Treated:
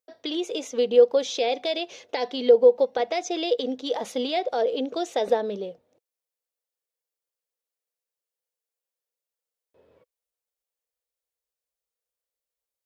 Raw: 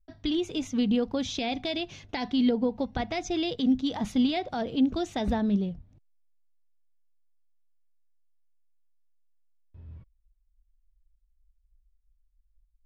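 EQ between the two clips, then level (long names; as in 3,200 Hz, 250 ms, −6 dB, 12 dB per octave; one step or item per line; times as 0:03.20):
high-pass with resonance 490 Hz, resonance Q 6.1
high-shelf EQ 4,000 Hz +6.5 dB
0.0 dB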